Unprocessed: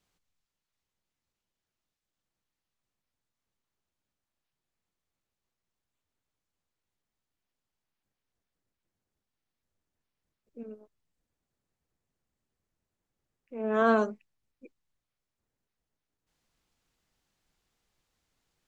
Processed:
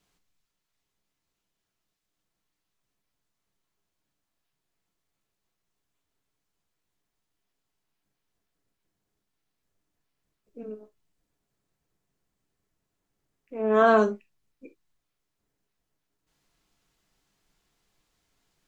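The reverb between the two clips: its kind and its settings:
reverb whose tail is shaped and stops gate 90 ms falling, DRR 6.5 dB
level +4 dB

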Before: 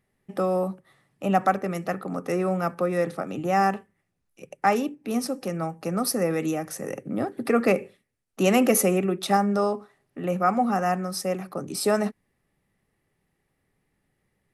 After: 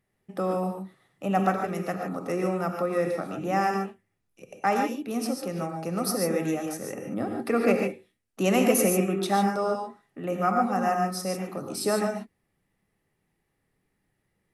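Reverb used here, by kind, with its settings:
reverb whose tail is shaped and stops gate 170 ms rising, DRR 2.5 dB
level −3.5 dB

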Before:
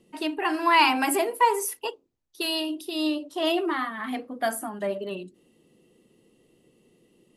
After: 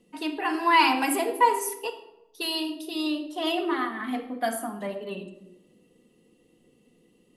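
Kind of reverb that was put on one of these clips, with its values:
rectangular room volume 3,400 cubic metres, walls furnished, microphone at 1.9 metres
level −2.5 dB

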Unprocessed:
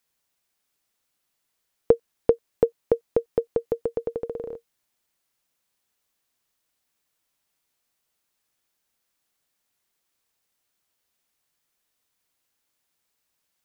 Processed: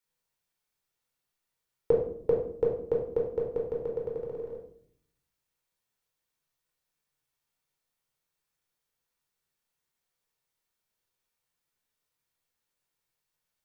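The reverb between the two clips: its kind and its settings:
rectangular room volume 1,000 cubic metres, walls furnished, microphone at 4.4 metres
level −12 dB

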